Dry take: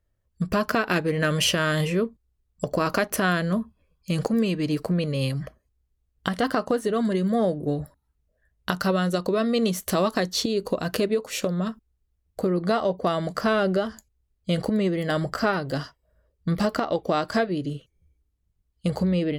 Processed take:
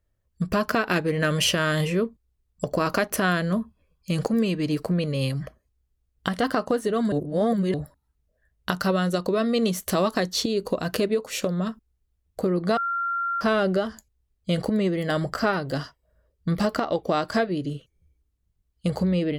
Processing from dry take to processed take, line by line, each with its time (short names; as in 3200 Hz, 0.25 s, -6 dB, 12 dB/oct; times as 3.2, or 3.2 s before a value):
7.12–7.74 reverse
12.77–13.41 bleep 1380 Hz -23.5 dBFS